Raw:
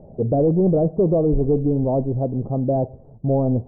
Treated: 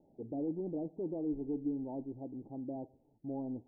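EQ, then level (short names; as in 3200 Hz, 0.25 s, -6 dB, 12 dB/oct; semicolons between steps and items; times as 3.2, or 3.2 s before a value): vocal tract filter u; tilt shelf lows -6.5 dB; low shelf 380 Hz -8.5 dB; -1.5 dB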